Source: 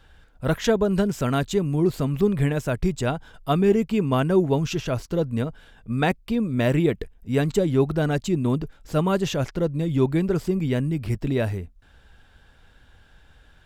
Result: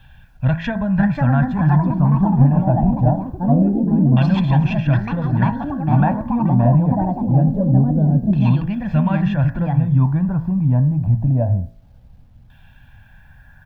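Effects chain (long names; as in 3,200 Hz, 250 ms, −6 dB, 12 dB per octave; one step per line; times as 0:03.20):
downward compressor 1.5 to 1, threshold −26 dBFS, peak gain reduction 5 dB
parametric band 360 Hz −12 dB 0.55 octaves
delay with pitch and tempo change per echo 640 ms, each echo +4 semitones, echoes 3
auto-filter low-pass saw down 0.24 Hz 380–3,000 Hz
comb filter 1.2 ms, depth 79%
hum removal 55.31 Hz, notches 36
bit reduction 11 bits
octave-band graphic EQ 125/250/2,000/8,000 Hz +9/+4/−3/−7 dB
level +1 dB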